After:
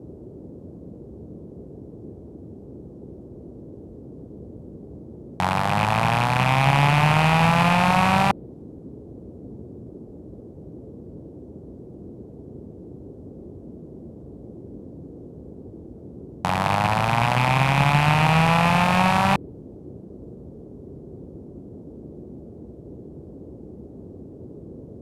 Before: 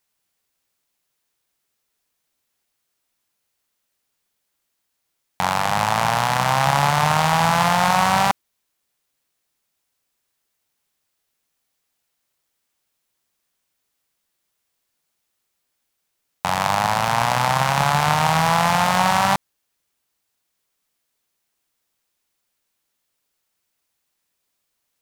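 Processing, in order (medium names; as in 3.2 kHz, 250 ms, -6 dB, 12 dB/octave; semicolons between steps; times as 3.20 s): rattle on loud lows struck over -27 dBFS, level -10 dBFS; dynamic bell 6.4 kHz, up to -6 dB, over -42 dBFS, Q 1.4; low-pass 11 kHz 12 dB/octave; bass shelf 440 Hz +9 dB; band noise 53–420 Hz -36 dBFS; trim -4 dB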